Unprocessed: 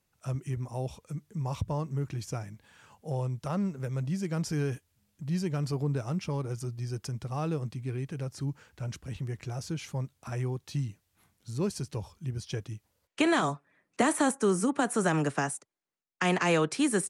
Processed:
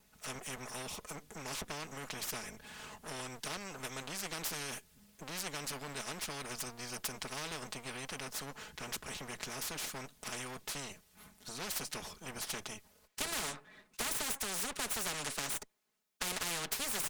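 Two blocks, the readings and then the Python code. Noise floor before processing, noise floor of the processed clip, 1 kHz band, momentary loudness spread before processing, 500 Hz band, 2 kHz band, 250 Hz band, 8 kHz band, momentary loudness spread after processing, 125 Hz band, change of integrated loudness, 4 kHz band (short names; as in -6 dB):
-77 dBFS, -68 dBFS, -9.0 dB, 13 LU, -13.5 dB, -5.0 dB, -17.5 dB, +1.0 dB, 12 LU, -20.5 dB, -8.0 dB, +2.0 dB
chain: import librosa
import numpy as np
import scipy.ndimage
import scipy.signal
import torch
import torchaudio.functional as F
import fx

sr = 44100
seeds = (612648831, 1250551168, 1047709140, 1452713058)

y = fx.lower_of_two(x, sr, delay_ms=4.7)
y = fx.spectral_comp(y, sr, ratio=4.0)
y = y * 10.0 ** (-4.0 / 20.0)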